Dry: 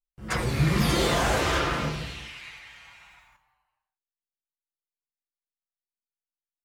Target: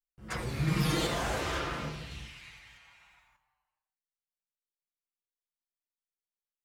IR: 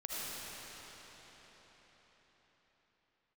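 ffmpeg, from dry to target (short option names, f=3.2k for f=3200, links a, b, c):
-filter_complex "[0:a]asettb=1/sr,asplit=3[a][b][c];[a]atrim=end=0.674[d];[b]atrim=start=0.67:end=1.07,asetpts=PTS-STARTPTS,afade=t=in:d=0.004:c=qsin,afade=t=out:st=0.396:d=0.004:c=qsin,aecho=1:1:6.4:0.95,atrim=end_sample=17640[e];[c]atrim=start=1.066[f];[d][e]acrossfade=d=0.004:c1=hsin:c2=qsin[g];[g][f]acrossfade=d=0.004:c1=qsin:c2=hsin,asettb=1/sr,asplit=3[h][i][j];[h]atrim=end=2.114[k];[i]atrim=start=2.11:end=2.78,asetpts=PTS-STARTPTS,afade=t=in:d=0.004:c=qsin,afade=t=out:st=0.666:d=0.004:c=qsin,bass=f=250:g=9,treble=f=4k:g=4[l];[j]atrim=start=2.776[m];[k][l]acrossfade=d=0.004:c1=hsin:c2=qsin[n];[n][m]acrossfade=d=0.004:c1=qsin:c2=hsin,volume=-8.5dB"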